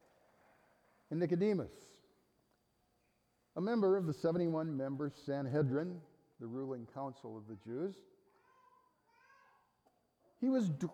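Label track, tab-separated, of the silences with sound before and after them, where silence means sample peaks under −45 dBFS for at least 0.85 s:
1.670000	3.570000	silence
7.920000	10.420000	silence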